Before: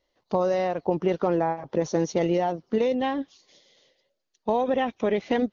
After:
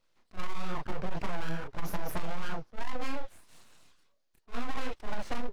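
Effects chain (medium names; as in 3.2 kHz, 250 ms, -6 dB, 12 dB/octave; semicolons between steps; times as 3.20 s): full-wave rectifier; chorus voices 4, 1 Hz, delay 29 ms, depth 4.3 ms; saturation -25.5 dBFS, distortion -11 dB; attacks held to a fixed rise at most 460 dB/s; trim +4 dB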